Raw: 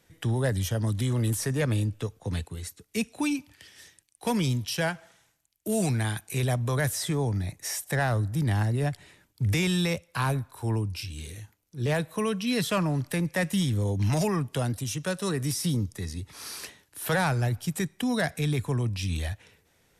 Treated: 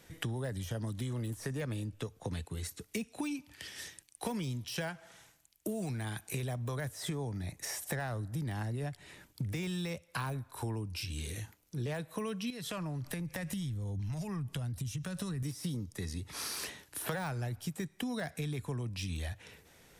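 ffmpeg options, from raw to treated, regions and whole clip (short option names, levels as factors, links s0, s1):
-filter_complex "[0:a]asettb=1/sr,asplit=3[s0][s1][s2];[s0]atrim=end=12.504[s3];[s1]atrim=start=12.5:end=15.43,asetpts=PTS-STARTPTS,afade=t=in:d=0.004:c=qsin,afade=t=out:st=2.926:d=0.004:c=qsin,acompressor=threshold=0.02:ratio=10:attack=3.2:release=140:knee=1:detection=peak,asubboost=boost=8:cutoff=160[s4];[s2]atrim=start=15.426[s5];[s3][s4]acrossfade=d=0.004:c1=hsin:c2=qsin[s6];[s6][s5]acrossfade=d=0.004:c1=qsin:c2=hsin,deesser=0.75,equalizer=f=100:t=o:w=0.24:g=-5,acompressor=threshold=0.00891:ratio=6,volume=1.88"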